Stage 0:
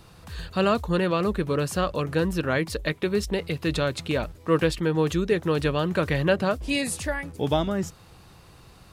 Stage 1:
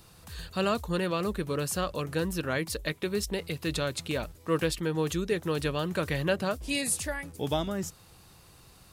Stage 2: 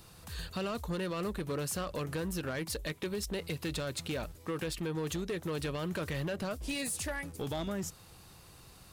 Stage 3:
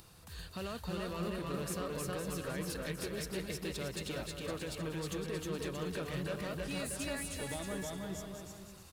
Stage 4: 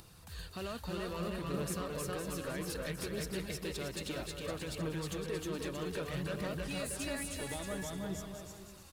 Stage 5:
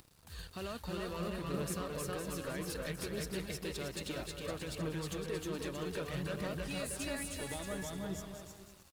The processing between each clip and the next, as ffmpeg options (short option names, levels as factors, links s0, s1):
-af "highshelf=f=5400:g=11.5,volume=0.501"
-af "alimiter=limit=0.0891:level=0:latency=1:release=22,acompressor=threshold=0.0282:ratio=5,volume=33.5,asoftclip=hard,volume=0.0299"
-filter_complex "[0:a]asplit=2[s0][s1];[s1]aecho=0:1:309:0.562[s2];[s0][s2]amix=inputs=2:normalize=0,acompressor=mode=upward:threshold=0.00447:ratio=2.5,asplit=2[s3][s4];[s4]aecho=0:1:320|512|627.2|696.3|737.8:0.631|0.398|0.251|0.158|0.1[s5];[s3][s5]amix=inputs=2:normalize=0,volume=0.501"
-af "aphaser=in_gain=1:out_gain=1:delay=3.7:decay=0.25:speed=0.62:type=triangular"
-af "aeval=exprs='sgn(val(0))*max(abs(val(0))-0.00133,0)':c=same"